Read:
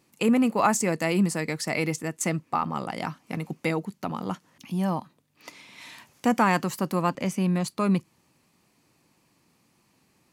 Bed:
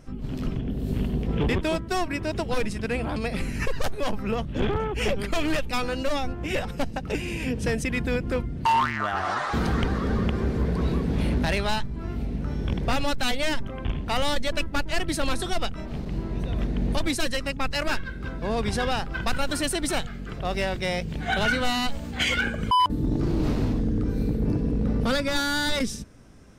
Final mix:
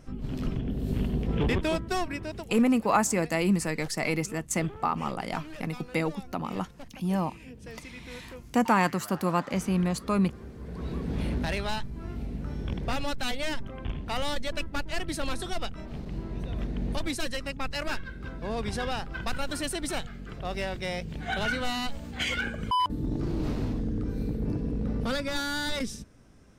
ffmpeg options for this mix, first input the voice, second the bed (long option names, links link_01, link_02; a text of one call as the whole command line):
ffmpeg -i stem1.wav -i stem2.wav -filter_complex "[0:a]adelay=2300,volume=-1.5dB[link_01];[1:a]volume=10.5dB,afade=type=out:start_time=1.88:duration=0.7:silence=0.158489,afade=type=in:start_time=10.6:duration=0.54:silence=0.237137[link_02];[link_01][link_02]amix=inputs=2:normalize=0" out.wav